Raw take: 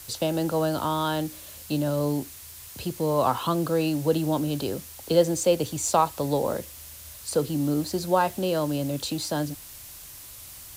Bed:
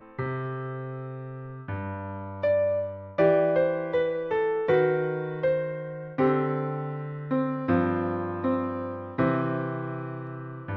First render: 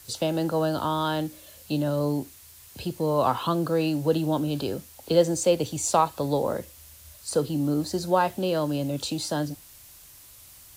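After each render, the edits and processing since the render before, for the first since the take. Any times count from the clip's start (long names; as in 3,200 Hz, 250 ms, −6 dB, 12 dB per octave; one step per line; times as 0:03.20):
noise reduction from a noise print 6 dB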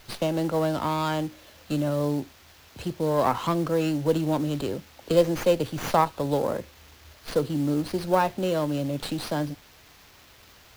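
log-companded quantiser 6 bits
windowed peak hold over 5 samples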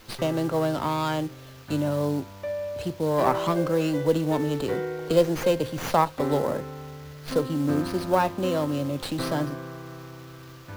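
mix in bed −7.5 dB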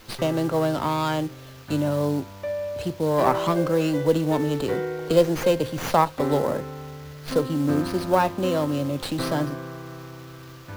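level +2 dB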